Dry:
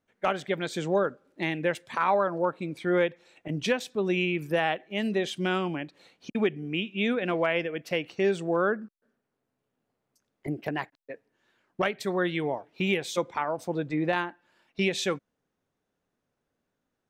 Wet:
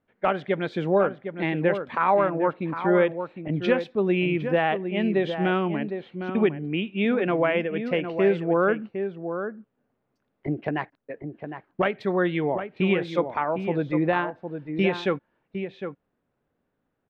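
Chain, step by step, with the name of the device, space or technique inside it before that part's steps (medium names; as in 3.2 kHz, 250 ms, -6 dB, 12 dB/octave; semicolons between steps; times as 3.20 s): shout across a valley (distance through air 370 m; echo from a far wall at 130 m, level -8 dB); trim +5 dB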